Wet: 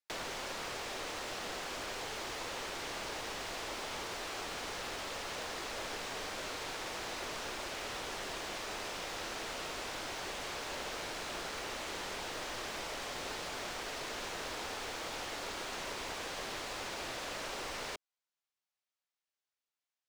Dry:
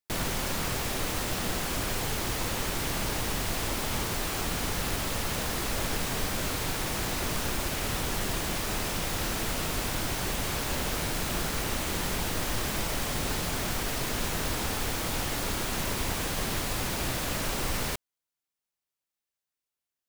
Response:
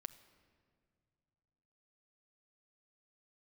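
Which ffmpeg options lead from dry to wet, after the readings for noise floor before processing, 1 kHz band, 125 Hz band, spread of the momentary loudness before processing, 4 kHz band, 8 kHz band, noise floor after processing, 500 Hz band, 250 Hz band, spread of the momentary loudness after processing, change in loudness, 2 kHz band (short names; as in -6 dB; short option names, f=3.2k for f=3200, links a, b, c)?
under -85 dBFS, -6.5 dB, -21.0 dB, 0 LU, -7.0 dB, -11.5 dB, under -85 dBFS, -7.0 dB, -14.0 dB, 0 LU, -9.5 dB, -7.0 dB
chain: -filter_complex "[0:a]acrossover=split=480[a][b];[b]acompressor=threshold=-38dB:ratio=2.5[c];[a][c]amix=inputs=2:normalize=0,acrossover=split=410 7400:gain=0.1 1 0.158[d][e][f];[d][e][f]amix=inputs=3:normalize=0,volume=-1.5dB"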